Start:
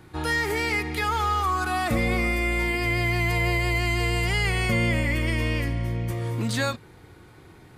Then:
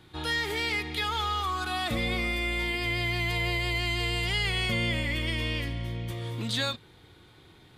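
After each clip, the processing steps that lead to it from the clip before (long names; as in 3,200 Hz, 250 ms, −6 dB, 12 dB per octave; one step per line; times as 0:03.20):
parametric band 3,500 Hz +13.5 dB 0.63 octaves
level −6.5 dB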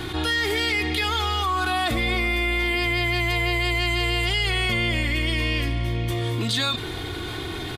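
comb filter 2.8 ms, depth 47%
envelope flattener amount 70%
level +2.5 dB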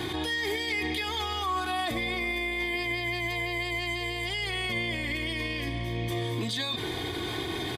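brickwall limiter −20.5 dBFS, peak gain reduction 9 dB
notch comb filter 1,400 Hz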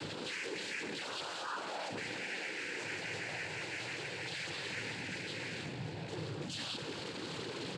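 soft clipping −35 dBFS, distortion −8 dB
cochlear-implant simulation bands 8
level −3 dB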